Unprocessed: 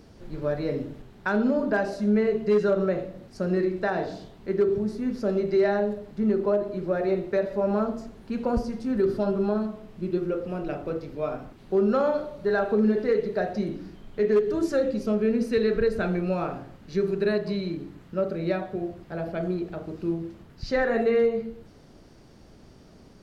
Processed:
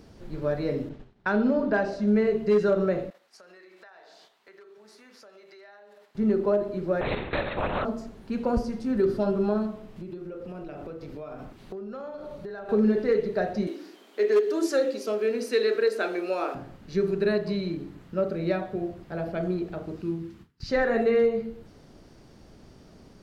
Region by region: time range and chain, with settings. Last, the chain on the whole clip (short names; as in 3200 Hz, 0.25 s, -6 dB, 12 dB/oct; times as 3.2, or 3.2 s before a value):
0.89–2.08 LPF 5400 Hz + expander -41 dBFS
3.1–6.15 HPF 1000 Hz + gate -57 dBFS, range -6 dB + compressor, threshold -49 dBFS
7.01–7.85 HPF 430 Hz + LPC vocoder at 8 kHz whisper + spectral compressor 2:1
9.96–12.69 compressor 12:1, threshold -34 dBFS + mismatched tape noise reduction encoder only
13.67–16.55 steep high-pass 280 Hz + high shelf 2800 Hz +7.5 dB
20.02–20.69 HPF 62 Hz 6 dB/oct + gate with hold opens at -39 dBFS, closes at -43 dBFS + bell 600 Hz -14 dB
whole clip: dry